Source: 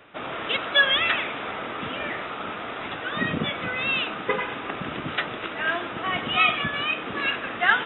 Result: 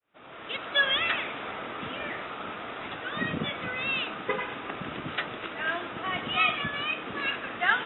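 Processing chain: opening faded in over 0.88 s; gain -4.5 dB

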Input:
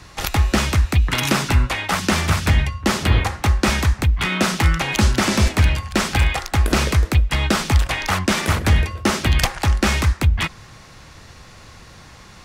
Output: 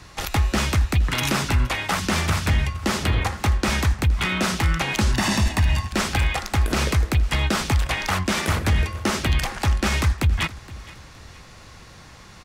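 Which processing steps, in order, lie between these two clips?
5.13–5.87 comb 1.1 ms, depth 58%; limiter -9.5 dBFS, peak gain reduction 7.5 dB; on a send: feedback echo 0.468 s, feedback 38%, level -19.5 dB; on the sum: gain -2 dB

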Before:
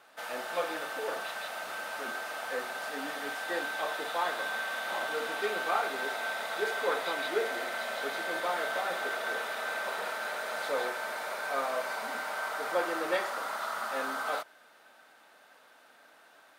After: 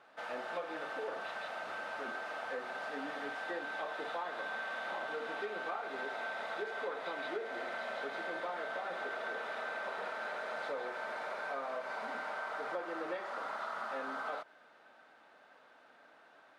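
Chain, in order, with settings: tape spacing loss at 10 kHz 20 dB; compressor, threshold -36 dBFS, peak gain reduction 10.5 dB

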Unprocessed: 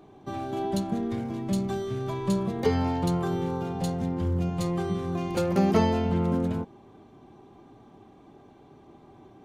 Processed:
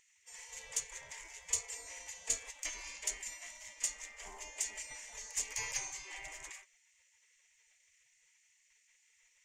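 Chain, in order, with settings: spectral gate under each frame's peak -30 dB weak; EQ curve 120 Hz 0 dB, 250 Hz -11 dB, 410 Hz -1 dB, 640 Hz -7 dB, 910 Hz -3 dB, 1400 Hz -19 dB, 2000 Hz +2 dB, 3900 Hz -12 dB, 7100 Hz +11 dB, 11000 Hz -9 dB; gain +6 dB

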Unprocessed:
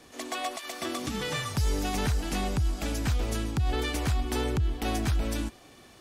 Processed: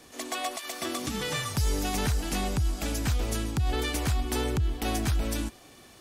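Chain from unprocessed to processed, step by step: high shelf 6500 Hz +6 dB

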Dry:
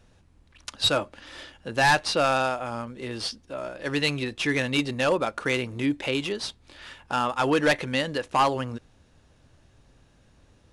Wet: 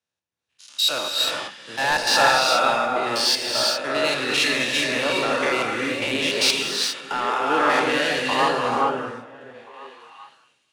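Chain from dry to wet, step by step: stepped spectrum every 0.1 s; HPF 81 Hz; high shelf 5200 Hz +6.5 dB; in parallel at +1 dB: negative-ratio compressor -33 dBFS, ratio -1; on the sum: weighting filter A; soft clip -18 dBFS, distortion -14 dB; on a send: delay with a stepping band-pass 0.461 s, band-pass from 170 Hz, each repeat 1.4 oct, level -3 dB; on the sum: non-linear reverb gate 0.44 s rising, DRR -1 dB; three-band expander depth 100%; gain +2.5 dB

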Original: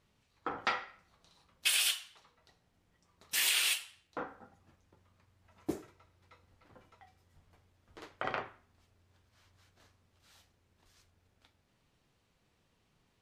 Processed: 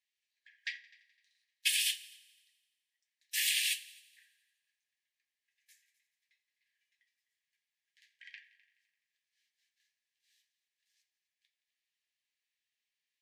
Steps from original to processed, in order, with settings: brick-wall FIR high-pass 1600 Hz; on a send: multi-head echo 85 ms, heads all three, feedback 40%, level -20 dB; on the sum: upward expander 1.5:1, over -47 dBFS

